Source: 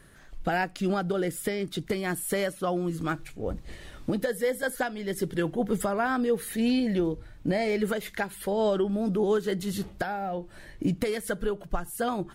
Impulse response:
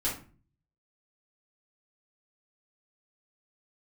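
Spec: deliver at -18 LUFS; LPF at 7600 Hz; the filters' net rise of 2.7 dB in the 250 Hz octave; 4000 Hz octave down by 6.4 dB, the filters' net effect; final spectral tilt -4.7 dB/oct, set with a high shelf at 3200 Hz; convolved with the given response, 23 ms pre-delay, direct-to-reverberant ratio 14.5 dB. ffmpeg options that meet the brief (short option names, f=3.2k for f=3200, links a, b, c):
-filter_complex "[0:a]lowpass=7.6k,equalizer=f=250:t=o:g=3.5,highshelf=f=3.2k:g=-6,equalizer=f=4k:t=o:g=-4,asplit=2[a][b];[1:a]atrim=start_sample=2205,adelay=23[c];[b][c]afir=irnorm=-1:irlink=0,volume=-20.5dB[d];[a][d]amix=inputs=2:normalize=0,volume=10dB"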